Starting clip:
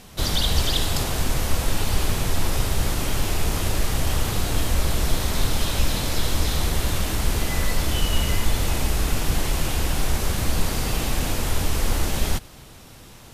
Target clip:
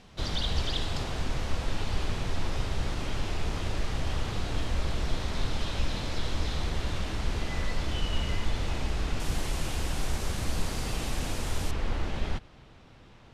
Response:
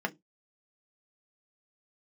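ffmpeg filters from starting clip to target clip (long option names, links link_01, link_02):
-af "asetnsamples=nb_out_samples=441:pad=0,asendcmd='9.2 lowpass f 9400;11.71 lowpass f 3200',lowpass=4800,volume=-7.5dB"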